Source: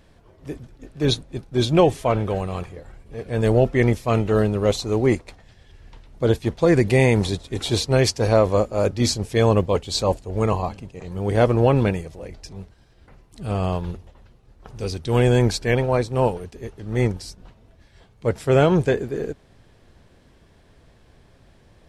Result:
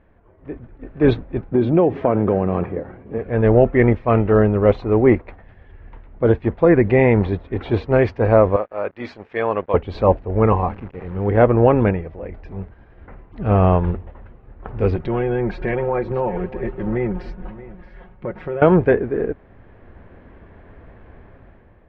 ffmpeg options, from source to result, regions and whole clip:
ffmpeg -i in.wav -filter_complex "[0:a]asettb=1/sr,asplit=3[link_01][link_02][link_03];[link_01]atrim=end=1.524[link_04];[link_02]atrim=start=1.52:end=3.18,asetpts=PTS-STARTPTS,afade=type=in:duration=0.004:curve=qsin,afade=type=out:start_time=1.656:duration=0.004:curve=qsin,highpass=98,equalizer=frequency=260:width=0.49:gain=9.5,acompressor=threshold=-21dB:ratio=4:attack=3.2:release=140:knee=1:detection=peak[link_05];[link_03]atrim=start=3.176[link_06];[link_04][link_05]acrossfade=duration=0.004:curve1=hsin:curve2=qsin[link_07];[link_07][link_06]acrossfade=duration=0.004:curve1=qsin:curve2=hsin,asettb=1/sr,asplit=3[link_08][link_09][link_10];[link_08]atrim=end=8.564[link_11];[link_09]atrim=start=8.56:end=9.74,asetpts=PTS-STARTPTS,afade=type=in:duration=0.004:curve=qsin,afade=type=out:start_time=1.176:duration=0.004:curve=qsin,highpass=frequency=1100:poles=1,aeval=exprs='sgn(val(0))*max(abs(val(0))-0.00299,0)':channel_layout=same[link_12];[link_10]atrim=start=9.736[link_13];[link_11][link_12]acrossfade=duration=0.004:curve1=hsin:curve2=qsin[link_14];[link_14][link_13]acrossfade=duration=0.004:curve1=qsin:curve2=hsin,asettb=1/sr,asplit=3[link_15][link_16][link_17];[link_15]atrim=end=10.464[link_18];[link_16]atrim=start=10.46:end=11.37,asetpts=PTS-STARTPTS,afade=type=in:duration=0.004:curve=qsin,afade=type=out:start_time=0.906:duration=0.004:curve=qsin,bandreject=frequency=640:width=10,acrusher=bits=8:dc=4:mix=0:aa=0.000001[link_19];[link_17]atrim=start=11.366[link_20];[link_18][link_19]acrossfade=duration=0.004:curve1=hsin:curve2=qsin[link_21];[link_21][link_20]acrossfade=duration=0.004:curve1=qsin:curve2=hsin,asettb=1/sr,asplit=3[link_22][link_23][link_24];[link_22]atrim=end=14.954[link_25];[link_23]atrim=start=14.95:end=18.62,asetpts=PTS-STARTPTS,afade=type=in:duration=0.004:curve=qsin,afade=type=out:start_time=3.666:duration=0.004:curve=qsin,aecho=1:1:5.5:0.76,atrim=end_sample=161847,acompressor=threshold=-28dB:ratio=6:attack=3.2:release=140:knee=1:detection=peak,aecho=1:1:628:0.141,atrim=end_sample=161847[link_26];[link_24]atrim=start=18.616[link_27];[link_25][link_26]acrossfade=duration=0.004:curve1=hsin:curve2=qsin[link_28];[link_28][link_27]acrossfade=duration=0.004:curve1=qsin:curve2=hsin,lowpass=frequency=2100:width=0.5412,lowpass=frequency=2100:width=1.3066,equalizer=frequency=140:width_type=o:width=0.33:gain=-7.5,dynaudnorm=framelen=210:gausssize=7:maxgain=11.5dB,volume=-1dB" out.wav

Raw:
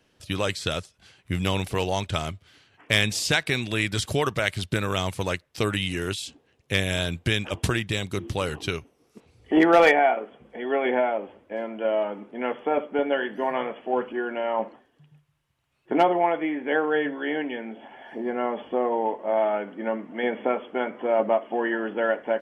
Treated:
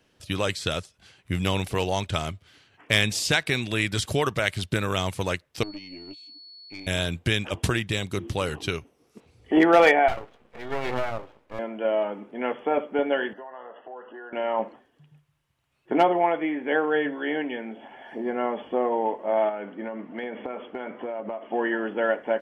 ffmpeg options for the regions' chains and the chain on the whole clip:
ffmpeg -i in.wav -filter_complex "[0:a]asettb=1/sr,asplit=3[link_01][link_02][link_03];[link_01]atrim=end=5.634[link_04];[link_02]atrim=start=5.63:end=6.87,asetpts=PTS-STARTPTS,afade=type=in:duration=0.004:curve=qsin,afade=type=out:start_time=1.236:duration=0.004:curve=qsin,asplit=3[link_05][link_06][link_07];[link_05]bandpass=frequency=300:width_type=q:width=8,volume=0dB[link_08];[link_06]bandpass=frequency=870:width_type=q:width=8,volume=-6dB[link_09];[link_07]bandpass=frequency=2240:width_type=q:width=8,volume=-9dB[link_10];[link_08][link_09][link_10]amix=inputs=3:normalize=0,aeval=exprs='(tanh(35.5*val(0)+0.55)-tanh(0.55))/35.5':channel_layout=same,aeval=exprs='val(0)+0.00631*sin(2*PI*4400*n/s)':channel_layout=same[link_11];[link_03]atrim=start=6.866[link_12];[link_04][link_11]acrossfade=duration=0.004:curve1=hsin:curve2=qsin[link_13];[link_13][link_12]acrossfade=duration=0.004:curve1=qsin:curve2=hsin,asettb=1/sr,asplit=3[link_14][link_15][link_16];[link_14]atrim=end=10.084[link_17];[link_15]atrim=start=10.08:end=11.59,asetpts=PTS-STARTPTS,afade=type=in:duration=0.004:curve=qsin,afade=type=out:start_time=1.506:duration=0.004:curve=qsin,equalizer=frequency=100:width_type=o:width=2.5:gain=-9,aeval=exprs='max(val(0),0)':channel_layout=same[link_18];[link_16]atrim=start=11.586[link_19];[link_17][link_18]acrossfade=duration=0.004:curve1=hsin:curve2=qsin[link_20];[link_20][link_19]acrossfade=duration=0.004:curve1=qsin:curve2=hsin,asettb=1/sr,asplit=3[link_21][link_22][link_23];[link_21]atrim=end=13.334[link_24];[link_22]atrim=start=13.33:end=14.33,asetpts=PTS-STARTPTS,afade=type=in:duration=0.004:curve=qsin,afade=type=out:start_time=0.996:duration=0.004:curve=qsin,asuperstop=centerf=2300:order=12:qfactor=4.1,acrossover=split=440 2300:gain=0.158 1 0.141[link_25][link_26][link_27];[link_25][link_26][link_27]amix=inputs=3:normalize=0,acompressor=threshold=-38dB:ratio=5:attack=3.2:release=140:knee=1:detection=peak[link_28];[link_23]atrim=start=14.326[link_29];[link_24][link_28]acrossfade=duration=0.004:curve1=hsin:curve2=qsin[link_30];[link_30][link_29]acrossfade=duration=0.004:curve1=qsin:curve2=hsin,asettb=1/sr,asplit=3[link_31][link_32][link_33];[link_31]atrim=end=19.494[link_34];[link_32]atrim=start=19.49:end=21.52,asetpts=PTS-STARTPTS,afade=type=in:duration=0.004:curve=qsin,afade=type=out:start_time=2.026:duration=0.004:curve=qsin,lowpass=4500,acompressor=threshold=-28dB:ratio=10:attack=3.2:release=140:knee=1:detection=peak[link_35];[link_33]atrim=start=21.516[link_36];[link_34][link_35]acrossfade=duration=0.004:curve1=hsin:curve2=qsin[link_37];[link_37][link_36]acrossfade=duration=0.004:curve1=qsin:curve2=hsin" out.wav

